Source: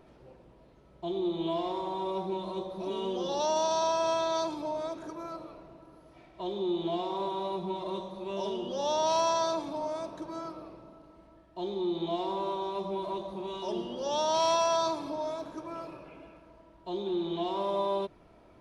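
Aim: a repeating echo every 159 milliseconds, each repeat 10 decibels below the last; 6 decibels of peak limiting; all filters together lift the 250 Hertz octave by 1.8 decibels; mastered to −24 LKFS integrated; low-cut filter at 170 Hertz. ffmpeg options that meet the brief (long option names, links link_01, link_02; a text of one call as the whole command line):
ffmpeg -i in.wav -af "highpass=170,equalizer=frequency=250:width_type=o:gain=4,alimiter=limit=-23.5dB:level=0:latency=1,aecho=1:1:159|318|477|636:0.316|0.101|0.0324|0.0104,volume=9dB" out.wav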